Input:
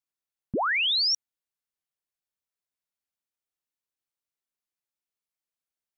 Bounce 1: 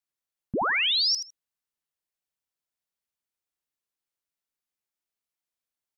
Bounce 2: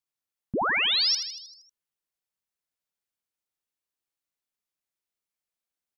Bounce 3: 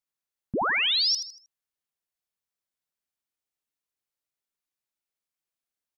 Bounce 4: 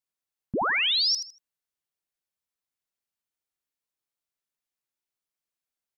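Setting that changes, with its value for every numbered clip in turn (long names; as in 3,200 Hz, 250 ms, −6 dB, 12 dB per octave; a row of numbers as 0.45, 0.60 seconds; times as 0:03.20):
repeating echo, feedback: 16, 60, 36, 24%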